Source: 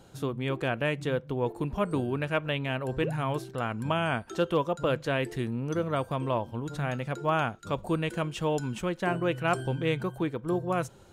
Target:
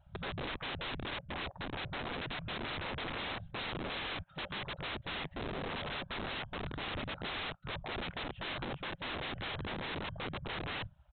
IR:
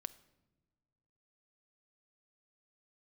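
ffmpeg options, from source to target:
-filter_complex "[0:a]afftfilt=real='hypot(re,im)*cos(2*PI*random(0))':imag='hypot(re,im)*sin(2*PI*random(1))':win_size=512:overlap=0.75,afftfilt=real='re*(1-between(b*sr/4096,180,540))':imag='im*(1-between(b*sr/4096,180,540))':win_size=4096:overlap=0.75,highshelf=f=2800:g=-3,asplit=2[s0][s1];[s1]acompressor=threshold=0.00708:ratio=10,volume=1.06[s2];[s0][s2]amix=inputs=2:normalize=0,afwtdn=0.00891,aresample=8000,aeval=exprs='(mod(66.8*val(0)+1,2)-1)/66.8':c=same,aresample=44100,volume=1.26"

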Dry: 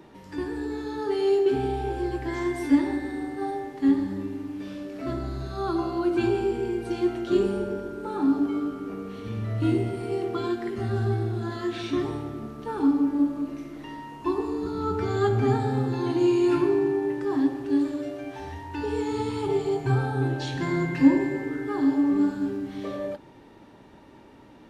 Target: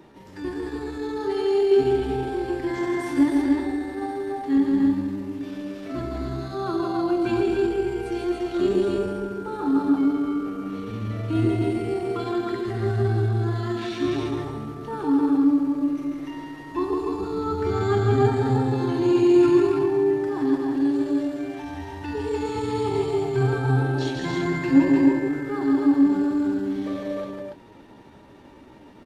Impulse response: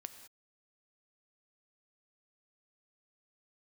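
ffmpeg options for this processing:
-af "aecho=1:1:134.1|250.7:0.631|0.708,atempo=0.85"

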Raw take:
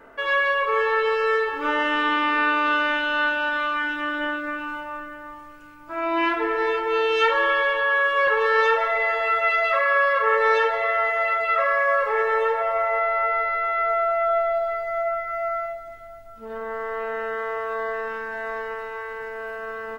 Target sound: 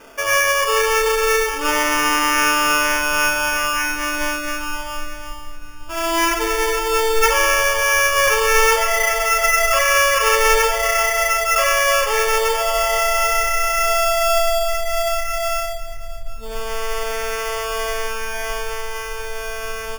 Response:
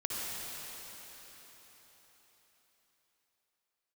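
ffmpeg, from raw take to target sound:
-af "acrusher=samples=11:mix=1:aa=0.000001,asubboost=boost=10.5:cutoff=65,volume=1.68"

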